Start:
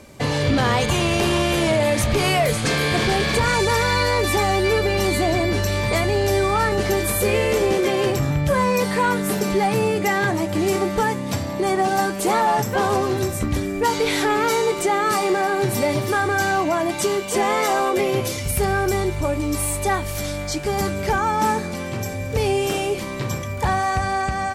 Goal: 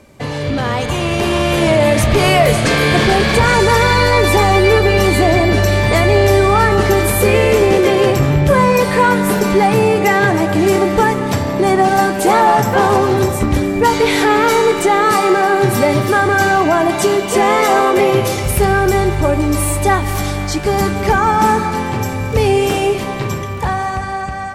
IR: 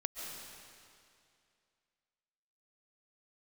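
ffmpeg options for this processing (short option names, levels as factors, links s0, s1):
-filter_complex "[0:a]dynaudnorm=f=160:g=17:m=2.66,asplit=2[s0][s1];[1:a]atrim=start_sample=2205,lowpass=3800[s2];[s1][s2]afir=irnorm=-1:irlink=0,volume=0.562[s3];[s0][s3]amix=inputs=2:normalize=0,volume=0.668"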